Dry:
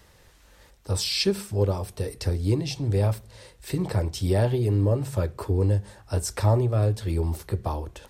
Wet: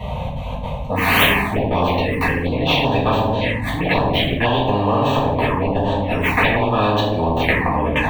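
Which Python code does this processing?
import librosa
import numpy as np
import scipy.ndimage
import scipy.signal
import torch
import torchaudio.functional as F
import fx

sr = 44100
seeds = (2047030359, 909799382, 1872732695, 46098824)

p1 = fx.tracing_dist(x, sr, depth_ms=0.21)
p2 = scipy.signal.sosfilt(scipy.signal.butter(4, 45.0, 'highpass', fs=sr, output='sos'), p1)
p3 = fx.peak_eq(p2, sr, hz=260.0, db=13.5, octaves=0.8)
p4 = fx.rider(p3, sr, range_db=5, speed_s=0.5)
p5 = p3 + (p4 * 10.0 ** (2.0 / 20.0))
p6 = fx.auto_swell(p5, sr, attack_ms=368.0)
p7 = fx.step_gate(p6, sr, bpm=167, pattern='xxx.xx.xxxxxxxx', floor_db=-24.0, edge_ms=4.5)
p8 = fx.air_absorb(p7, sr, metres=320.0)
p9 = fx.fixed_phaser(p8, sr, hz=1400.0, stages=6)
p10 = p9 + fx.echo_feedback(p9, sr, ms=78, feedback_pct=39, wet_db=-13.0, dry=0)
p11 = fx.room_shoebox(p10, sr, seeds[0], volume_m3=87.0, walls='mixed', distance_m=1.8)
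p12 = fx.env_phaser(p11, sr, low_hz=280.0, high_hz=2100.0, full_db=-12.5)
p13 = fx.spectral_comp(p12, sr, ratio=10.0)
y = p13 * 10.0 ** (-3.5 / 20.0)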